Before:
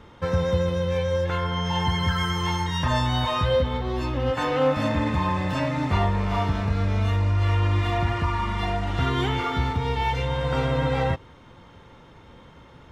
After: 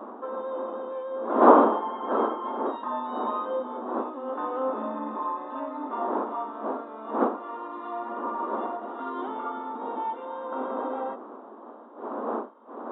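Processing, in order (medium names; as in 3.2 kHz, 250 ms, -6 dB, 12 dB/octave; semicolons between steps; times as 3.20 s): wind noise 570 Hz -21 dBFS; resonant high shelf 1.6 kHz -11.5 dB, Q 3; FFT band-pass 210–3900 Hz; trim -9 dB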